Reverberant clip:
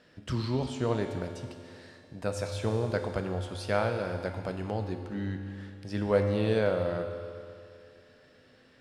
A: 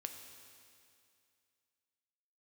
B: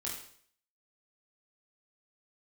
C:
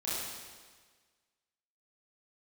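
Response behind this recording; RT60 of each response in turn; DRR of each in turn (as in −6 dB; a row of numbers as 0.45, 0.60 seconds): A; 2.4, 0.55, 1.5 seconds; 4.5, −5.0, −10.0 decibels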